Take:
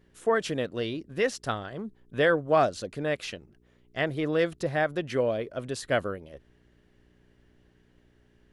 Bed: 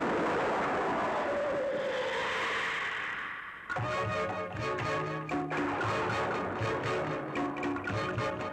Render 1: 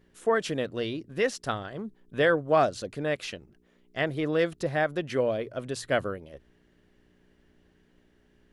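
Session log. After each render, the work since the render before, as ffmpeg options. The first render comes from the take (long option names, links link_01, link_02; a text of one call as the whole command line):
ffmpeg -i in.wav -af "bandreject=frequency=60:width_type=h:width=4,bandreject=frequency=120:width_type=h:width=4" out.wav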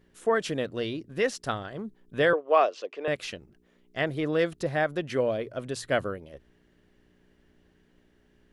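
ffmpeg -i in.wav -filter_complex "[0:a]asettb=1/sr,asplit=3[link_01][link_02][link_03];[link_01]atrim=end=2.334[link_04];[link_02]atrim=start=2.33:end=3.08,asetpts=PTS-STARTPTS,afade=type=in:duration=0.004:curve=qsin,afade=type=out:start_time=0.746:duration=0.004:curve=qsin,highpass=frequency=380:width=0.5412,highpass=frequency=380:width=1.3066,equalizer=frequency=440:width_type=q:width=4:gain=3,equalizer=frequency=1100:width_type=q:width=4:gain=5,equalizer=frequency=1500:width_type=q:width=4:gain=-5,equalizer=frequency=2700:width_type=q:width=4:gain=7,equalizer=frequency=4200:width_type=q:width=4:gain=-8,lowpass=frequency=5300:width=0.5412,lowpass=frequency=5300:width=1.3066[link_05];[link_03]atrim=start=3.076[link_06];[link_04][link_05]acrossfade=duration=0.004:curve1=hsin:curve2=qsin[link_07];[link_07][link_06]acrossfade=duration=0.004:curve1=qsin:curve2=hsin" out.wav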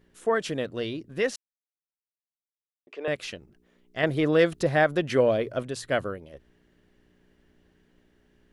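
ffmpeg -i in.wav -filter_complex "[0:a]asettb=1/sr,asplit=3[link_01][link_02][link_03];[link_01]atrim=end=4.034[link_04];[link_02]atrim=start=4.03:end=5.63,asetpts=PTS-STARTPTS,afade=type=in:duration=0.004:curve=qsin,afade=type=out:start_time=1.596:duration=0.004:curve=qsin,acontrast=27[link_05];[link_03]atrim=start=5.626[link_06];[link_04][link_05]acrossfade=duration=0.004:curve1=hsin:curve2=qsin[link_07];[link_07][link_06]acrossfade=duration=0.004:curve1=qsin:curve2=hsin,asplit=3[link_08][link_09][link_10];[link_08]atrim=end=1.36,asetpts=PTS-STARTPTS,afade=type=out:start_time=1.356:duration=0.004:curve=hsin[link_11];[link_09]atrim=start=1.36:end=2.87,asetpts=PTS-STARTPTS,volume=0[link_12];[link_10]atrim=start=2.87,asetpts=PTS-STARTPTS,afade=type=in:duration=0.004:curve=hsin[link_13];[link_11][link_12][link_13]concat=n=3:v=0:a=1" out.wav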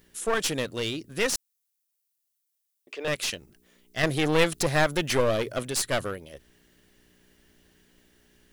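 ffmpeg -i in.wav -af "crystalizer=i=5:c=0,aeval=exprs='clip(val(0),-1,0.0422)':channel_layout=same" out.wav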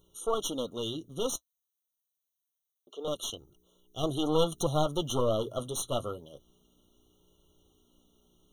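ffmpeg -i in.wav -af "flanger=delay=2:depth=7.4:regen=-46:speed=0.27:shape=sinusoidal,afftfilt=real='re*eq(mod(floor(b*sr/1024/1400),2),0)':imag='im*eq(mod(floor(b*sr/1024/1400),2),0)':win_size=1024:overlap=0.75" out.wav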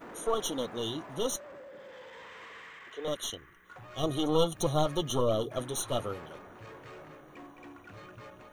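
ffmpeg -i in.wav -i bed.wav -filter_complex "[1:a]volume=-16dB[link_01];[0:a][link_01]amix=inputs=2:normalize=0" out.wav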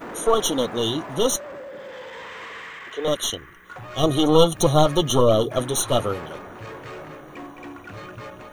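ffmpeg -i in.wav -af "volume=11dB" out.wav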